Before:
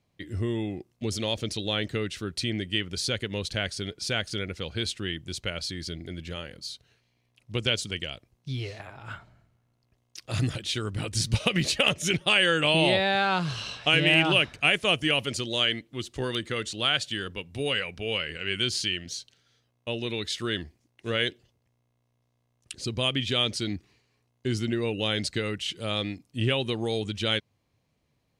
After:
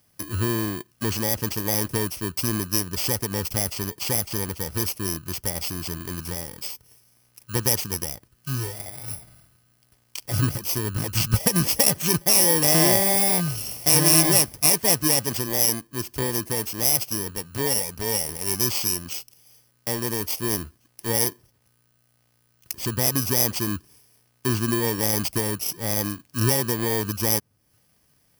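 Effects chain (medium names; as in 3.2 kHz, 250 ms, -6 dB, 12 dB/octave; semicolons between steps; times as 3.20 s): bit-reversed sample order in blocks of 32 samples; tape noise reduction on one side only encoder only; trim +4.5 dB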